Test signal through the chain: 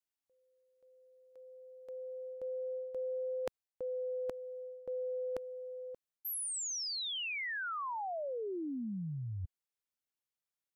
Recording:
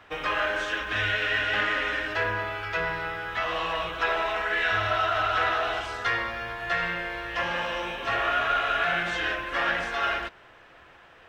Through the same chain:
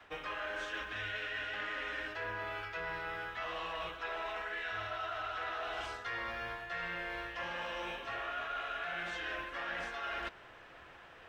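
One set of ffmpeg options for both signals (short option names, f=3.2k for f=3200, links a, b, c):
-af "adynamicequalizer=threshold=0.00447:dfrequency=130:dqfactor=1.1:tfrequency=130:tqfactor=1.1:attack=5:release=100:ratio=0.375:range=3:mode=cutabove:tftype=bell,areverse,acompressor=threshold=-35dB:ratio=6,areverse,volume=-2.5dB"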